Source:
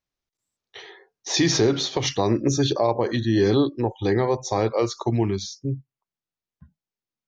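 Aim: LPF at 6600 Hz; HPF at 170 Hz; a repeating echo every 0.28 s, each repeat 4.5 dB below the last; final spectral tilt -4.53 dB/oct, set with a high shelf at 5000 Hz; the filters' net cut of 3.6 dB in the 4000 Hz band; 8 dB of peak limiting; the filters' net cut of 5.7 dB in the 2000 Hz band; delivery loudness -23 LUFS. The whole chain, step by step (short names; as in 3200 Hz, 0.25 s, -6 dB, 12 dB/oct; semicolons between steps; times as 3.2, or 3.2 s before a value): HPF 170 Hz; LPF 6600 Hz; bell 2000 Hz -6.5 dB; bell 4000 Hz -7 dB; high shelf 5000 Hz +9 dB; limiter -17 dBFS; feedback echo 0.28 s, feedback 60%, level -4.5 dB; gain +2.5 dB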